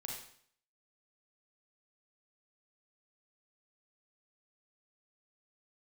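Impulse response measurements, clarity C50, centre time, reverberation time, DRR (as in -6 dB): 1.5 dB, 45 ms, 0.60 s, -1.5 dB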